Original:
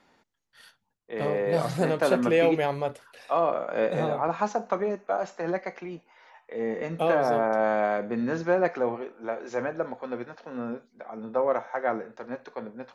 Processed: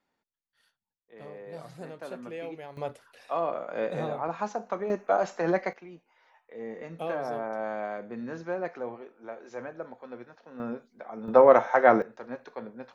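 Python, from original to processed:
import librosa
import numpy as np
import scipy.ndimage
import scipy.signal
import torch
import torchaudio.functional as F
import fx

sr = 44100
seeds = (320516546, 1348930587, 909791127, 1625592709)

y = fx.gain(x, sr, db=fx.steps((0.0, -17.0), (2.77, -5.0), (4.9, 3.0), (5.73, -9.0), (10.6, -1.0), (11.28, 8.5), (12.02, -2.5)))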